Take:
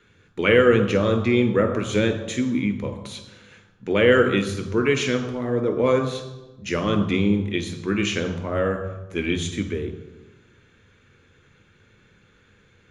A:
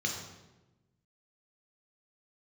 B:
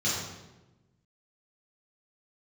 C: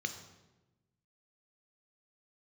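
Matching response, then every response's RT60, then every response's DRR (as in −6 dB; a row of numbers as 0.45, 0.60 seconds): C; 1.1, 1.1, 1.1 seconds; 0.0, −9.5, 7.0 decibels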